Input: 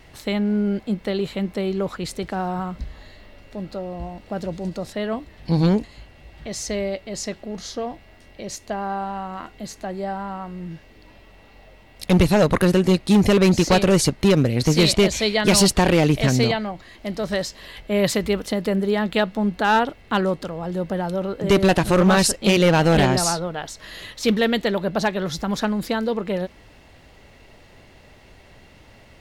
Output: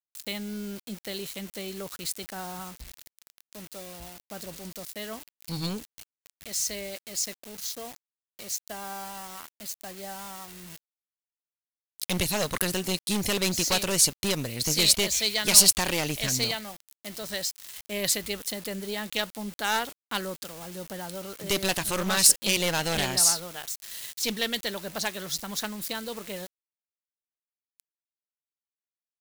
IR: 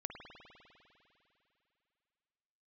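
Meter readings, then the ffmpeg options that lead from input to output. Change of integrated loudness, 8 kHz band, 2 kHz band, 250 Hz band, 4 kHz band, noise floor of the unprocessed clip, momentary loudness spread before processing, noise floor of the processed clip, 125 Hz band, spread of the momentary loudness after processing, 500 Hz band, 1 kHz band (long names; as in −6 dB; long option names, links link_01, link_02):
−5.0 dB, +4.5 dB, −6.0 dB, −15.0 dB, −0.5 dB, −49 dBFS, 17 LU, below −85 dBFS, −15.0 dB, 19 LU, −13.5 dB, −10.5 dB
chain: -af "aeval=exprs='0.422*(cos(1*acos(clip(val(0)/0.422,-1,1)))-cos(1*PI/2))+0.168*(cos(2*acos(clip(val(0)/0.422,-1,1)))-cos(2*PI/2))+0.00422*(cos(3*acos(clip(val(0)/0.422,-1,1)))-cos(3*PI/2))+0.0335*(cos(4*acos(clip(val(0)/0.422,-1,1)))-cos(4*PI/2))':channel_layout=same,aeval=exprs='val(0)*gte(abs(val(0)),0.0168)':channel_layout=same,crystalizer=i=8:c=0,volume=-14.5dB"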